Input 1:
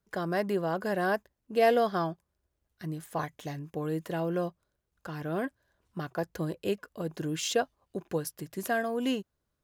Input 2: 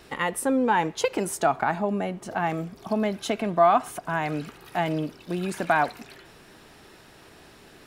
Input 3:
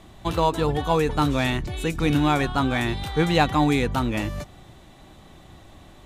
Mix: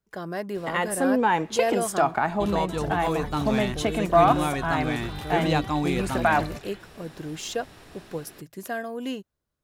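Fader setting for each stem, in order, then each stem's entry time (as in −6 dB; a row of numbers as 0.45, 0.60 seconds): −2.0, +0.5, −6.0 decibels; 0.00, 0.55, 2.15 seconds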